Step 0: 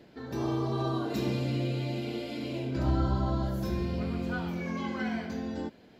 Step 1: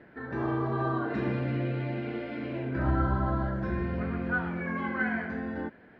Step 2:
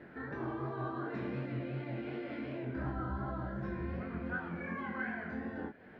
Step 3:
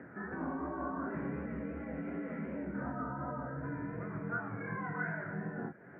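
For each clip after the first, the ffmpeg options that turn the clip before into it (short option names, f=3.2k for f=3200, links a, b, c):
-af "lowpass=f=1.7k:t=q:w=3.4"
-af "acompressor=threshold=-44dB:ratio=2,flanger=delay=19.5:depth=7.2:speed=2.7,volume=4dB"
-af "acompressor=mode=upward:threshold=-49dB:ratio=2.5,highpass=f=180:t=q:w=0.5412,highpass=f=180:t=q:w=1.307,lowpass=f=2.1k:t=q:w=0.5176,lowpass=f=2.1k:t=q:w=0.7071,lowpass=f=2.1k:t=q:w=1.932,afreqshift=-61,volume=1.5dB"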